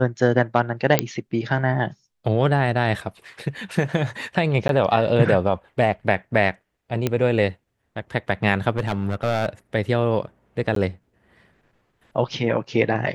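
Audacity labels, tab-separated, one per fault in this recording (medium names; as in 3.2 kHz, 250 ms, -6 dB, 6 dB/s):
0.990000	0.990000	pop -1 dBFS
4.680000	4.690000	dropout 12 ms
7.070000	7.070000	pop -8 dBFS
8.770000	9.490000	clipped -17 dBFS
10.750000	10.760000	dropout 13 ms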